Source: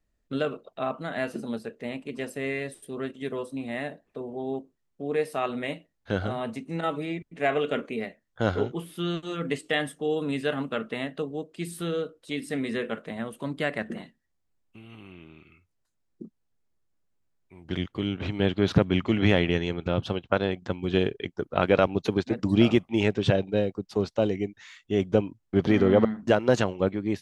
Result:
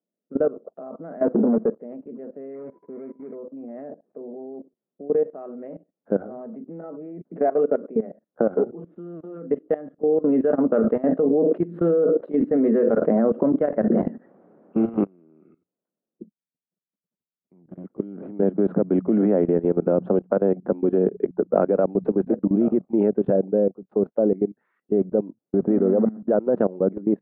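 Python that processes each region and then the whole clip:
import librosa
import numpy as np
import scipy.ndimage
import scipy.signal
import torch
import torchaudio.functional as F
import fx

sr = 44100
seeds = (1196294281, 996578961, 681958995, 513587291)

y = fx.chain(x, sr, fx.median_filter(points=15),
    fx.leveller(passes=3),
    fx.band_squash(depth_pct=70), at=(1.22, 1.79))
y = fx.median_filter(y, sr, points=41, at=(2.54, 3.34), fade=0.02)
y = fx.lowpass_res(y, sr, hz=2200.0, q=13.0, at=(2.54, 3.34), fade=0.02)
y = fx.dmg_tone(y, sr, hz=990.0, level_db=-55.0, at=(2.54, 3.34), fade=0.02)
y = fx.chain(y, sr, fx.low_shelf(hz=83.0, db=-4.0),
    fx.clip_hard(threshold_db=-18.5),
    fx.band_squash(depth_pct=70), at=(7.25, 8.67))
y = fx.chain(y, sr, fx.low_shelf(hz=150.0, db=-7.5),
    fx.tremolo(hz=7.0, depth=0.45),
    fx.env_flatten(amount_pct=100), at=(10.24, 15.05))
y = fx.chain(y, sr, fx.curve_eq(hz=(150.0, 400.0, 9800.0), db=(0, -12, 1)),
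    fx.tube_stage(drive_db=37.0, bias=0.4), at=(16.23, 17.84))
y = fx.chain(y, sr, fx.hum_notches(base_hz=60, count=3),
    fx.band_squash(depth_pct=100), at=(18.42, 22.36))
y = scipy.signal.sosfilt(scipy.signal.ellip(3, 1.0, 60, [190.0, 1400.0], 'bandpass', fs=sr, output='sos'), y)
y = fx.low_shelf_res(y, sr, hz=780.0, db=9.0, q=1.5)
y = fx.level_steps(y, sr, step_db=18)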